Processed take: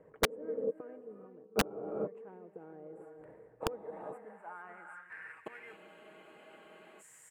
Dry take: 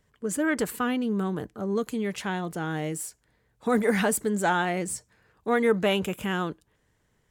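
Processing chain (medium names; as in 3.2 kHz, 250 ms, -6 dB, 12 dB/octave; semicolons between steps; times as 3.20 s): inverted gate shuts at -26 dBFS, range -38 dB; comb 6.3 ms, depth 38%; gated-style reverb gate 470 ms rising, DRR 5.5 dB; in parallel at -9 dB: sample-and-hold 12×; on the sum: band-pass sweep 480 Hz -> 7.1 kHz, 3.65–6.80 s; reverse; upward compressor, threshold -59 dBFS; reverse; high-order bell 4.5 kHz -15.5 dB 1.2 oct; integer overflow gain 35 dB; spectral freeze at 5.79 s, 1.20 s; trim +16.5 dB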